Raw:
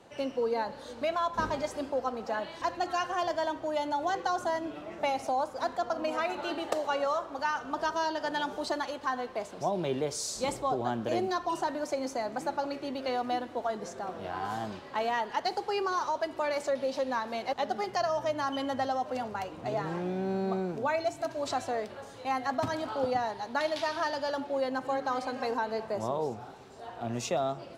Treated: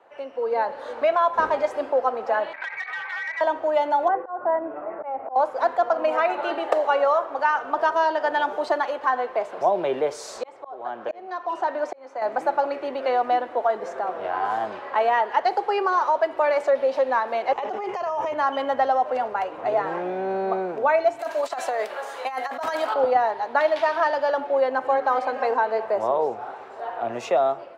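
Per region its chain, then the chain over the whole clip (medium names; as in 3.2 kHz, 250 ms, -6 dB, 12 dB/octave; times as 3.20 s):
2.53–3.41 s: frequency inversion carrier 2.6 kHz + compression, threshold -33 dBFS + transformer saturation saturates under 3 kHz
4.08–5.36 s: Bessel low-pass 1.2 kHz, order 4 + slow attack 258 ms
10.38–12.22 s: low-pass 7.4 kHz + bass shelf 150 Hz -10 dB + slow attack 740 ms
17.52–18.34 s: rippled EQ curve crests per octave 0.74, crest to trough 8 dB + compressor with a negative ratio -36 dBFS
21.19–22.94 s: RIAA curve recording + compressor with a negative ratio -34 dBFS, ratio -0.5
whole clip: dynamic bell 1.2 kHz, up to -5 dB, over -44 dBFS, Q 0.73; level rider gain up to 11 dB; three-band isolator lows -24 dB, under 450 Hz, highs -21 dB, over 2.2 kHz; trim +4 dB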